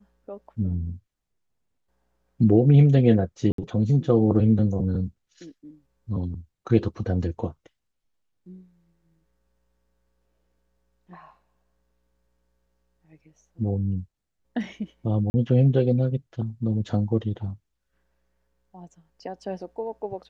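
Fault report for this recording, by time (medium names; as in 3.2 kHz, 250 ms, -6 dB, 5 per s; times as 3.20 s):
3.52–3.58 s: dropout 63 ms
15.30–15.34 s: dropout 40 ms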